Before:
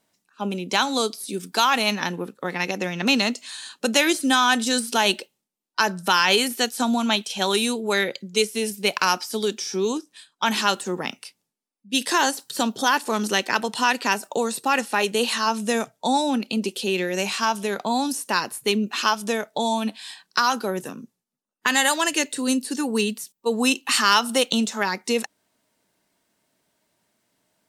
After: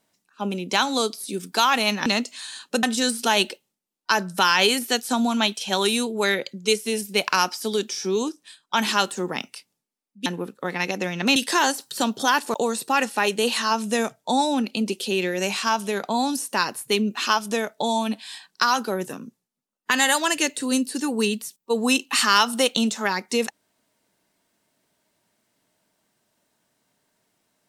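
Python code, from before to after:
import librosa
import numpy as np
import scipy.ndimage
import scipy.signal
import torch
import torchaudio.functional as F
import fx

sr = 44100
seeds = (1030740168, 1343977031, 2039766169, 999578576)

y = fx.edit(x, sr, fx.move(start_s=2.06, length_s=1.1, to_s=11.95),
    fx.cut(start_s=3.93, length_s=0.59),
    fx.cut(start_s=13.13, length_s=1.17), tone=tone)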